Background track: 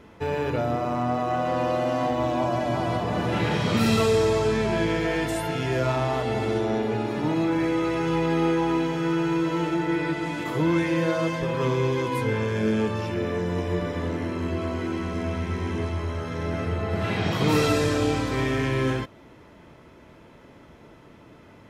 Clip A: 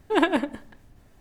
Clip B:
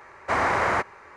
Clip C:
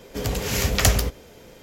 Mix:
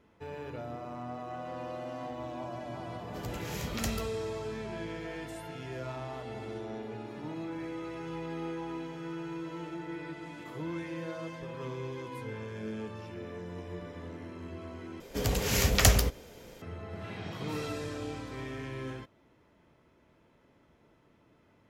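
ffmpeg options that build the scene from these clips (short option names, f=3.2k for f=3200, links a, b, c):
-filter_complex "[3:a]asplit=2[a][b];[0:a]volume=-15dB,asplit=2[c][d];[c]atrim=end=15.004[e];[b]atrim=end=1.62,asetpts=PTS-STARTPTS,volume=-3.5dB[f];[d]atrim=start=16.616[g];[a]atrim=end=1.62,asetpts=PTS-STARTPTS,volume=-17.5dB,afade=t=in:d=0.004:c=hsin,afade=t=out:st=1.616:d=0.004:c=hsin,adelay=2990[h];[e][f]acrossfade=d=0.004:c1=hsin:c2=hsin[i];[i][g]acrossfade=d=0.004:c1=hsin:c2=hsin[j];[j][h]amix=inputs=2:normalize=0"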